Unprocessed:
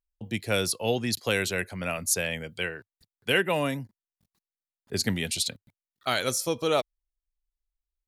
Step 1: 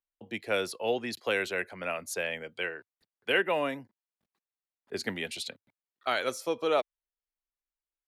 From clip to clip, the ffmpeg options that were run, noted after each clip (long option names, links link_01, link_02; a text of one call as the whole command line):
ffmpeg -i in.wav -filter_complex "[0:a]acrossover=split=270 3200:gain=0.141 1 0.224[link_01][link_02][link_03];[link_01][link_02][link_03]amix=inputs=3:normalize=0,volume=-1dB" out.wav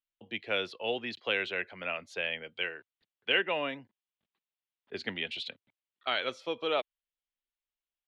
ffmpeg -i in.wav -af "lowpass=frequency=3200:width_type=q:width=2.7,volume=-4.5dB" out.wav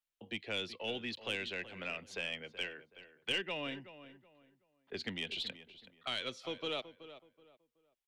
ffmpeg -i in.wav -filter_complex "[0:a]acrossover=split=280|3000[link_01][link_02][link_03];[link_02]acompressor=threshold=-45dB:ratio=3[link_04];[link_01][link_04][link_03]amix=inputs=3:normalize=0,aeval=exprs='(tanh(20*val(0)+0.2)-tanh(0.2))/20':channel_layout=same,asplit=2[link_05][link_06];[link_06]adelay=376,lowpass=frequency=2200:poles=1,volume=-13dB,asplit=2[link_07][link_08];[link_08]adelay=376,lowpass=frequency=2200:poles=1,volume=0.29,asplit=2[link_09][link_10];[link_10]adelay=376,lowpass=frequency=2200:poles=1,volume=0.29[link_11];[link_05][link_07][link_09][link_11]amix=inputs=4:normalize=0,volume=1dB" out.wav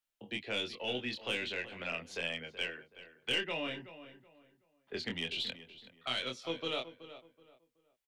ffmpeg -i in.wav -filter_complex "[0:a]asplit=2[link_01][link_02];[link_02]adelay=24,volume=-4dB[link_03];[link_01][link_03]amix=inputs=2:normalize=0,volume=1dB" out.wav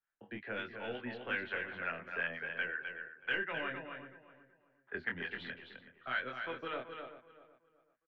ffmpeg -i in.wav -filter_complex "[0:a]lowpass=frequency=1600:width_type=q:width=4.9,acrossover=split=610[link_01][link_02];[link_01]aeval=exprs='val(0)*(1-0.7/2+0.7/2*cos(2*PI*5.6*n/s))':channel_layout=same[link_03];[link_02]aeval=exprs='val(0)*(1-0.7/2-0.7/2*cos(2*PI*5.6*n/s))':channel_layout=same[link_04];[link_03][link_04]amix=inputs=2:normalize=0,asplit=2[link_05][link_06];[link_06]aecho=0:1:259:0.473[link_07];[link_05][link_07]amix=inputs=2:normalize=0,volume=-1dB" out.wav